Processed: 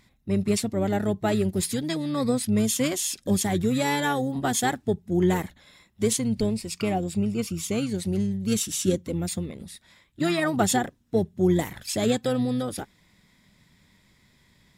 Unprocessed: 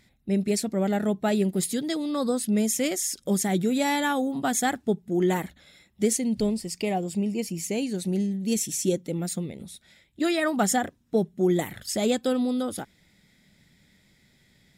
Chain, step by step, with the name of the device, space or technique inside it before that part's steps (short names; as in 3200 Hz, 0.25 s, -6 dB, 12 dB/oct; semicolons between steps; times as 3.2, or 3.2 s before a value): octave pedal (harmoniser -12 st -8 dB)